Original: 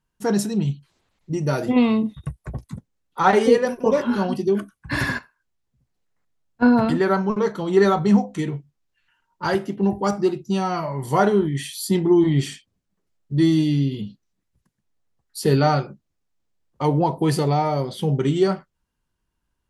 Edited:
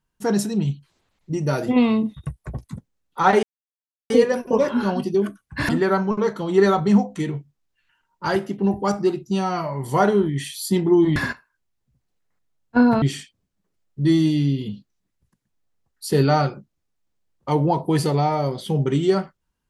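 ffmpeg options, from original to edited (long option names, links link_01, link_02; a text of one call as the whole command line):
ffmpeg -i in.wav -filter_complex "[0:a]asplit=5[link_01][link_02][link_03][link_04][link_05];[link_01]atrim=end=3.43,asetpts=PTS-STARTPTS,afade=type=out:start_time=3.426:duration=0.004:curve=hsin,apad=pad_dur=0.67[link_06];[link_02]atrim=start=3.43:end=5.022,asetpts=PTS-STARTPTS,afade=type=in:duration=0.004:curve=hsin[link_07];[link_03]atrim=start=6.878:end=12.352[link_08];[link_04]atrim=start=5.018:end=6.882[link_09];[link_05]atrim=start=12.348[link_10];[link_06][link_07]concat=n=2:v=0:a=1[link_11];[link_11][link_08]acrossfade=duration=0.004:curve1=hsin:curve2=hsin[link_12];[link_12][link_09]acrossfade=duration=0.004:curve1=hsin:curve2=hsin[link_13];[link_13][link_10]acrossfade=duration=0.004:curve1=hsin:curve2=hsin" out.wav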